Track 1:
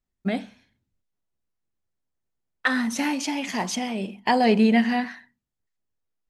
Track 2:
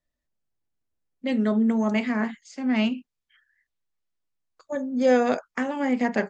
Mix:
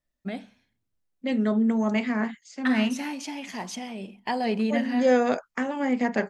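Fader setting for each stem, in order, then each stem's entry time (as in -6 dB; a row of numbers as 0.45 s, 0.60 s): -7.5 dB, -1.0 dB; 0.00 s, 0.00 s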